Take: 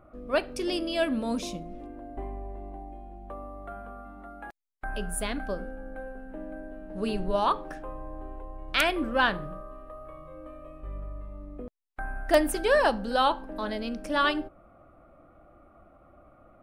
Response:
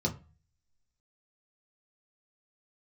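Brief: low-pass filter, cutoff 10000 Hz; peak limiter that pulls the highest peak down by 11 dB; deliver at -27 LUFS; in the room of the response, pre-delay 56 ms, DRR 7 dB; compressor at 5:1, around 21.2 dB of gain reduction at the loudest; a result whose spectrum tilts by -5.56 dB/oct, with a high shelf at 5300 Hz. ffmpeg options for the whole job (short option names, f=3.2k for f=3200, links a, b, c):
-filter_complex "[0:a]lowpass=10k,highshelf=f=5.3k:g=-8,acompressor=threshold=-41dB:ratio=5,alimiter=level_in=12.5dB:limit=-24dB:level=0:latency=1,volume=-12.5dB,asplit=2[a][b];[1:a]atrim=start_sample=2205,adelay=56[c];[b][c]afir=irnorm=-1:irlink=0,volume=-13dB[d];[a][d]amix=inputs=2:normalize=0,volume=17.5dB"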